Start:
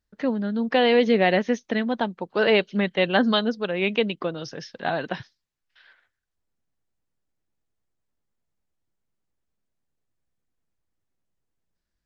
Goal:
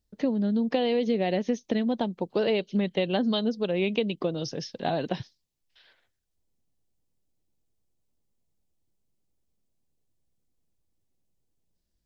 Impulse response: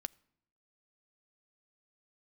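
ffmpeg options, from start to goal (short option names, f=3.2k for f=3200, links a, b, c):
-af "equalizer=f=1.5k:t=o:w=1.4:g=-13.5,acompressor=threshold=-26dB:ratio=6,volume=4dB"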